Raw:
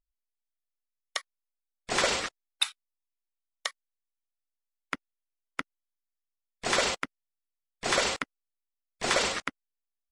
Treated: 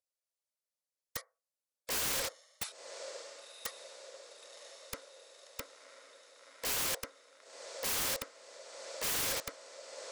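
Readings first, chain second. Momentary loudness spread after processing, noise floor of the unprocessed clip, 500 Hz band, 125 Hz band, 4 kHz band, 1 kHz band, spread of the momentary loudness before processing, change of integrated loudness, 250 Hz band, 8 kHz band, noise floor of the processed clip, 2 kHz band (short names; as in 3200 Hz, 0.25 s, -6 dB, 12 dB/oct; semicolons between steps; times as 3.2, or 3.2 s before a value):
20 LU, under -85 dBFS, -9.0 dB, -6.0 dB, -8.0 dB, -11.5 dB, 13 LU, -6.0 dB, -11.0 dB, -2.0 dB, under -85 dBFS, -10.5 dB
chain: band shelf 6900 Hz +8 dB; notch 740 Hz, Q 12; compressor 2.5:1, threshold -25 dBFS, peak gain reduction 6.5 dB; resonant high-pass 530 Hz, resonance Q 4.9; diffused feedback echo 1.041 s, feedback 61%, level -15.5 dB; FDN reverb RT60 0.3 s, low-frequency decay 1×, high-frequency decay 0.3×, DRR 15 dB; wrapped overs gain 23.5 dB; gain -5 dB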